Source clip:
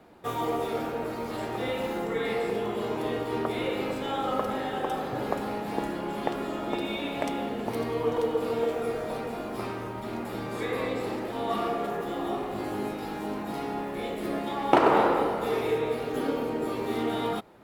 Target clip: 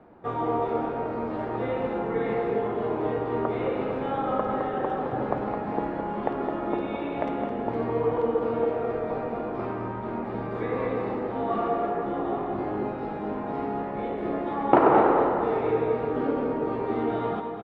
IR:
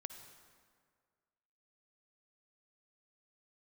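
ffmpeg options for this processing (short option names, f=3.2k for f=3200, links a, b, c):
-filter_complex "[0:a]lowpass=1.5k,aecho=1:1:213:0.422,asplit=2[a][b];[1:a]atrim=start_sample=2205[c];[b][c]afir=irnorm=-1:irlink=0,volume=6.5dB[d];[a][d]amix=inputs=2:normalize=0,volume=-5dB"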